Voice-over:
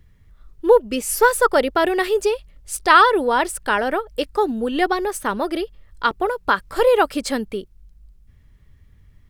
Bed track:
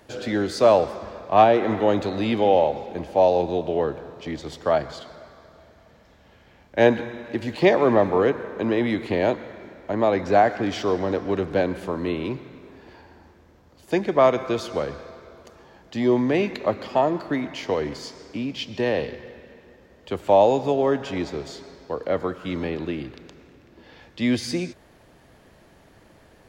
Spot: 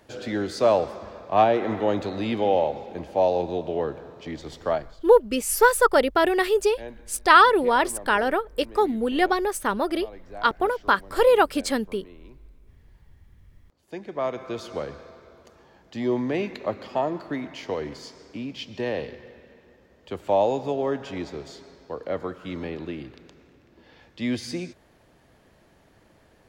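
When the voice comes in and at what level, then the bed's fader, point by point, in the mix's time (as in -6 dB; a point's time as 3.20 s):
4.40 s, -2.0 dB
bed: 4.72 s -3.5 dB
5.06 s -22.5 dB
13.25 s -22.5 dB
14.73 s -5 dB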